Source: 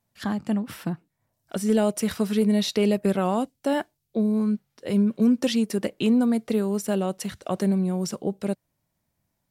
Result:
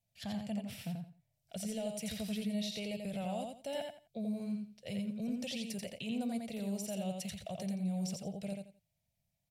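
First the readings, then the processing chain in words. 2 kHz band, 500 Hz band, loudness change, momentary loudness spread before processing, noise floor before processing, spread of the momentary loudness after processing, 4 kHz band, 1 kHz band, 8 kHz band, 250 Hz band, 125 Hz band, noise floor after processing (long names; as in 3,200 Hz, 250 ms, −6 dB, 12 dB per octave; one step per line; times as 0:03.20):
−12.5 dB, −16.0 dB, −14.5 dB, 10 LU, −78 dBFS, 6 LU, −9.5 dB, −14.5 dB, −9.0 dB, −15.0 dB, −12.0 dB, −83 dBFS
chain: drawn EQ curve 160 Hz 0 dB, 340 Hz −20 dB, 660 Hz 0 dB, 1,100 Hz −20 dB, 1,600 Hz −13 dB, 2,400 Hz +1 dB, 13,000 Hz −3 dB
brickwall limiter −25.5 dBFS, peak gain reduction 9 dB
on a send: repeating echo 86 ms, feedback 23%, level −4 dB
on the sum: level −6.5 dB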